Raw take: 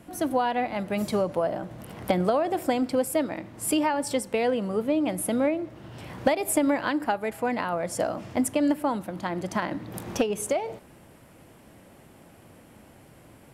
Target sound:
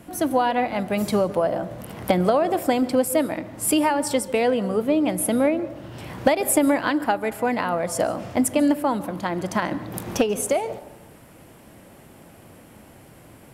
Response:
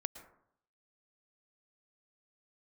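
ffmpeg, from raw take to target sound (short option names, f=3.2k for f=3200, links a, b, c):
-filter_complex "[0:a]asplit=2[a][b];[1:a]atrim=start_sample=2205,asetrate=35280,aresample=44100,highshelf=f=11k:g=11[c];[b][c]afir=irnorm=-1:irlink=0,volume=-3.5dB[d];[a][d]amix=inputs=2:normalize=0"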